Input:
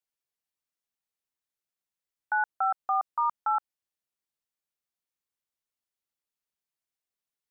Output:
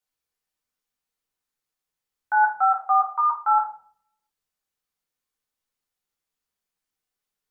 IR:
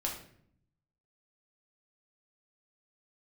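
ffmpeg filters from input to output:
-filter_complex "[0:a]asplit=3[a][b][c];[a]afade=t=out:st=2.57:d=0.02[d];[b]highpass=620,afade=t=in:st=2.57:d=0.02,afade=t=out:st=3.52:d=0.02[e];[c]afade=t=in:st=3.52:d=0.02[f];[d][e][f]amix=inputs=3:normalize=0[g];[1:a]atrim=start_sample=2205,asetrate=61740,aresample=44100[h];[g][h]afir=irnorm=-1:irlink=0,volume=5.5dB"

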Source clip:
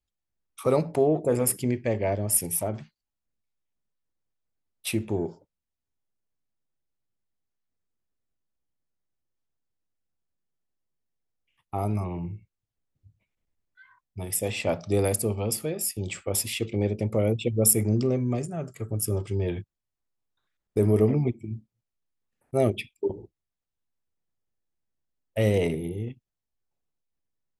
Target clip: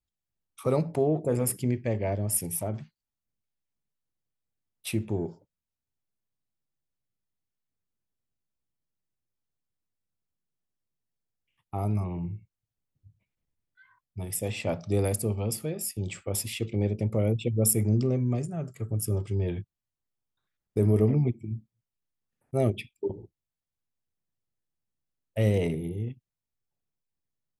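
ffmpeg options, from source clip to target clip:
-af "equalizer=f=130:t=o:w=1.7:g=6,volume=-4.5dB"

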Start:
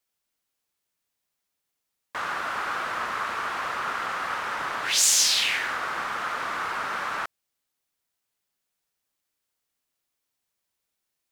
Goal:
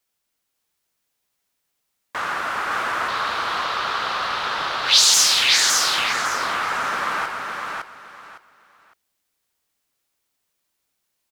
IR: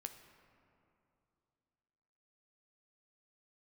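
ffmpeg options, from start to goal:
-filter_complex "[0:a]asettb=1/sr,asplit=3[a][b][c];[a]atrim=end=3.084[d];[b]atrim=start=3.08:end=5.14,asetpts=PTS-STARTPTS,afade=t=in:d=0.004:c=qsin,afade=t=out:st=2.056:d=0.004:c=qsin,equalizer=f=250:t=o:w=1:g=-4,equalizer=f=2k:t=o:w=1:g=-5,equalizer=f=4k:t=o:w=1:g=12,equalizer=f=8k:t=o:w=1:g=-5,equalizer=f=16k:t=o:w=1:g=-7[e];[c]atrim=start=5.136[f];[d][e]acrossfade=d=0.004:c1=hsin:c2=qsin[g];[g][f]acrossfade=d=0.004:c1=qsin:c2=hsin,aecho=1:1:559|1118|1677:0.631|0.145|0.0334,volume=4.5dB"

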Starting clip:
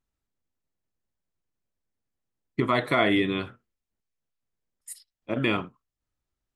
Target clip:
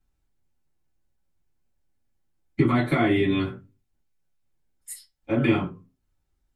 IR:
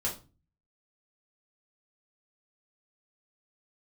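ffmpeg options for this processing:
-filter_complex "[0:a]acrossover=split=300[a][b];[b]acompressor=threshold=-33dB:ratio=2[c];[a][c]amix=inputs=2:normalize=0[d];[1:a]atrim=start_sample=2205,asetrate=70560,aresample=44100[e];[d][e]afir=irnorm=-1:irlink=0,volume=4dB"

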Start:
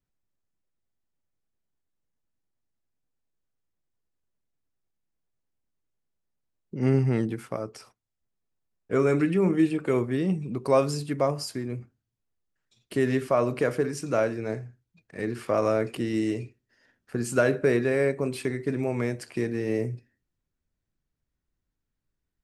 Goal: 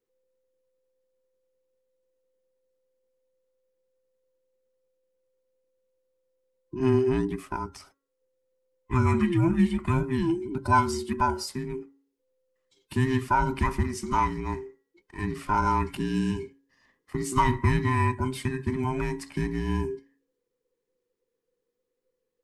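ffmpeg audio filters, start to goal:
-af "afftfilt=real='real(if(between(b,1,1008),(2*floor((b-1)/24)+1)*24-b,b),0)':imag='imag(if(between(b,1,1008),(2*floor((b-1)/24)+1)*24-b,b),0)*if(between(b,1,1008),-1,1)':win_size=2048:overlap=0.75,bandreject=f=276.1:t=h:w=4,bandreject=f=552.2:t=h:w=4,bandreject=f=828.3:t=h:w=4,bandreject=f=1.1044k:t=h:w=4,bandreject=f=1.3805k:t=h:w=4,bandreject=f=1.6566k:t=h:w=4,bandreject=f=1.9327k:t=h:w=4"

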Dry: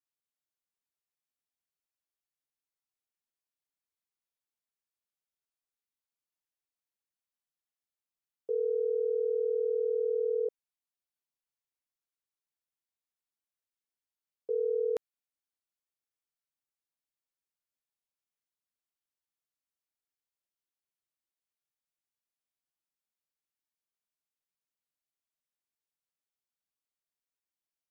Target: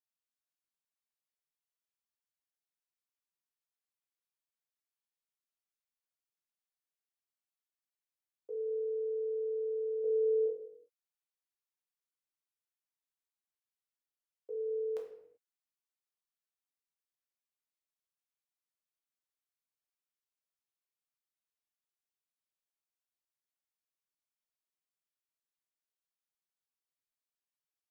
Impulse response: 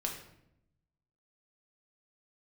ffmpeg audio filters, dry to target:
-filter_complex "[0:a]lowshelf=f=390:g=-10.5,asettb=1/sr,asplit=3[a][b][c];[a]atrim=end=10.044[d];[b]atrim=start=10.04:end=10.46,asetpts=PTS-STARTPTS,afade=t=in:d=0.004:c=qsin,afade=t=out:st=0.416:d=0.004:c=qsin,acontrast=56[e];[c]atrim=start=10.456[f];[d][e]acrossfade=d=0.004:c1=hsin:c2=qsin[g];[g][f]acrossfade=d=0.004:c1=qsin:c2=hsin[h];[1:a]atrim=start_sample=2205,afade=t=out:st=0.45:d=0.01,atrim=end_sample=20286[i];[h][i]afir=irnorm=-1:irlink=0,volume=-6dB"

